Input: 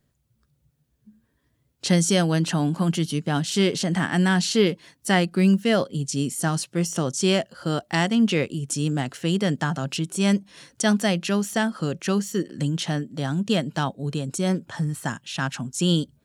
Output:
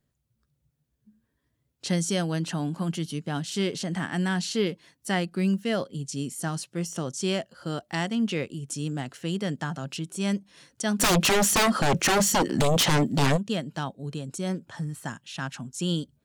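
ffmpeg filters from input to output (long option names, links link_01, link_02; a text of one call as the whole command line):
ffmpeg -i in.wav -filter_complex "[0:a]asplit=3[link_01][link_02][link_03];[link_01]afade=type=out:start_time=10.99:duration=0.02[link_04];[link_02]aeval=exprs='0.282*sin(PI/2*5.62*val(0)/0.282)':channel_layout=same,afade=type=in:start_time=10.99:duration=0.02,afade=type=out:start_time=13.36:duration=0.02[link_05];[link_03]afade=type=in:start_time=13.36:duration=0.02[link_06];[link_04][link_05][link_06]amix=inputs=3:normalize=0,volume=-6.5dB" out.wav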